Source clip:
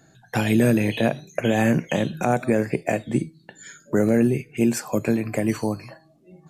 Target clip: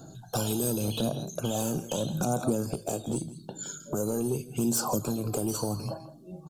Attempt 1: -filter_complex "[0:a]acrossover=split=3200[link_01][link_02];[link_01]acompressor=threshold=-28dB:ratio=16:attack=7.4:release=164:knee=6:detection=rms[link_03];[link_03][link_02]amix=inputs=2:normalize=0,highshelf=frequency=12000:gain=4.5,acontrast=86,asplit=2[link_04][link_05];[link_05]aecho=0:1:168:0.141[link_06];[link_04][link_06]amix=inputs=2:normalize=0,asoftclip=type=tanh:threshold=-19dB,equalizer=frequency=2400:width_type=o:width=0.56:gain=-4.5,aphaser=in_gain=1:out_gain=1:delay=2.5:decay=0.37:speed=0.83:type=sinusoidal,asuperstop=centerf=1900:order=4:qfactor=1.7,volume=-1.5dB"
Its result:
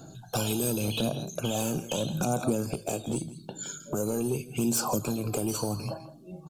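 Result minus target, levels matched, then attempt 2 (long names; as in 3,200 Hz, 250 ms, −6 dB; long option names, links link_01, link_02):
2,000 Hz band +4.5 dB
-filter_complex "[0:a]acrossover=split=3200[link_01][link_02];[link_01]acompressor=threshold=-28dB:ratio=16:attack=7.4:release=164:knee=6:detection=rms[link_03];[link_03][link_02]amix=inputs=2:normalize=0,highshelf=frequency=12000:gain=4.5,acontrast=86,asplit=2[link_04][link_05];[link_05]aecho=0:1:168:0.141[link_06];[link_04][link_06]amix=inputs=2:normalize=0,asoftclip=type=tanh:threshold=-19dB,equalizer=frequency=2400:width_type=o:width=0.56:gain=-14.5,aphaser=in_gain=1:out_gain=1:delay=2.5:decay=0.37:speed=0.83:type=sinusoidal,asuperstop=centerf=1900:order=4:qfactor=1.7,volume=-1.5dB"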